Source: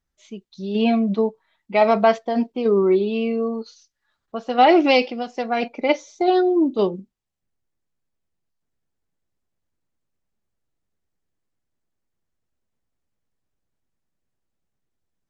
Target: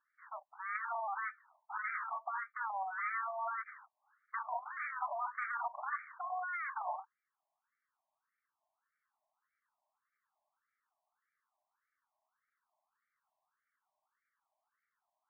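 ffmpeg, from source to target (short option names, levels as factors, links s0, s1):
-af "aeval=exprs='abs(val(0))':c=same,aeval=exprs='(tanh(28.2*val(0)+0.2)-tanh(0.2))/28.2':c=same,afftfilt=real='re*between(b*sr/1024,790*pow(1700/790,0.5+0.5*sin(2*PI*1.7*pts/sr))/1.41,790*pow(1700/790,0.5+0.5*sin(2*PI*1.7*pts/sr))*1.41)':imag='im*between(b*sr/1024,790*pow(1700/790,0.5+0.5*sin(2*PI*1.7*pts/sr))/1.41,790*pow(1700/790,0.5+0.5*sin(2*PI*1.7*pts/sr))*1.41)':win_size=1024:overlap=0.75,volume=3.55"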